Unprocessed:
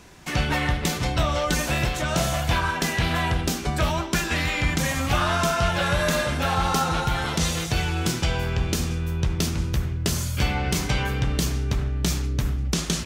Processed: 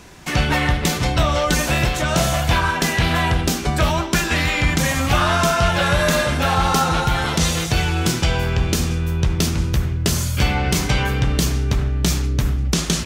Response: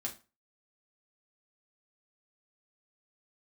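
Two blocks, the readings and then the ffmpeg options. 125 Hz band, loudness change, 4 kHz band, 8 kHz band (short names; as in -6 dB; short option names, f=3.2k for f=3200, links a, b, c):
+5.5 dB, +5.5 dB, +5.0 dB, +5.0 dB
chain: -af "acontrast=37"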